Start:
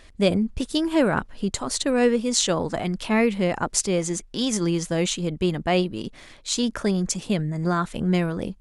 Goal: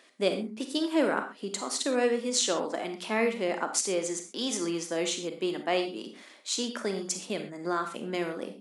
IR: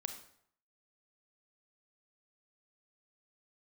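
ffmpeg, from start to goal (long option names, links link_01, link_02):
-filter_complex "[0:a]highpass=frequency=260:width=0.5412,highpass=frequency=260:width=1.3066[link_01];[1:a]atrim=start_sample=2205,atrim=end_sample=6174[link_02];[link_01][link_02]afir=irnorm=-1:irlink=0,volume=-3dB"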